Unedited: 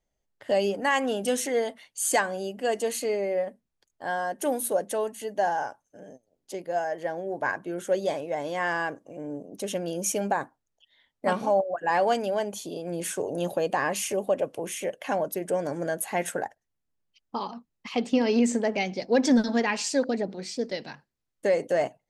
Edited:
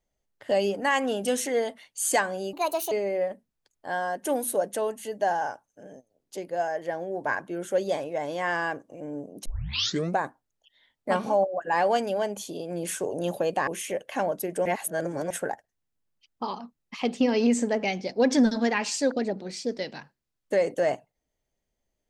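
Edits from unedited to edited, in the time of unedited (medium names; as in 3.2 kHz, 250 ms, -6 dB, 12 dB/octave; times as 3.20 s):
2.53–3.08 s: speed 143%
9.62 s: tape start 0.73 s
13.84–14.60 s: delete
15.58–16.23 s: reverse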